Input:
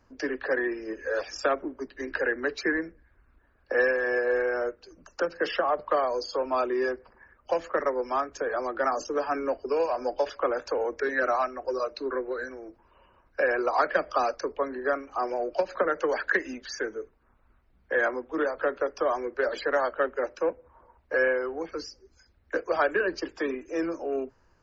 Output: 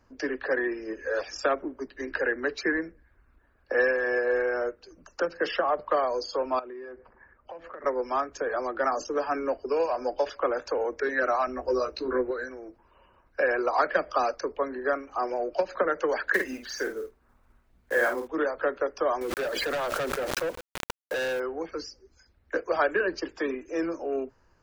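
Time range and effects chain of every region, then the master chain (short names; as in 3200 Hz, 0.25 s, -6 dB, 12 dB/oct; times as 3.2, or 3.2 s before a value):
6.59–7.84 LPF 2400 Hz + compressor 8:1, threshold -38 dBFS
11.47–12.31 tone controls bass +8 dB, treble +2 dB + doubler 16 ms -3 dB
16.34–18.28 block floating point 5-bit + doubler 50 ms -5.5 dB
19.21–21.4 hard clip -26.5 dBFS + requantised 8-bit, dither none + backwards sustainer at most 23 dB/s
whole clip: dry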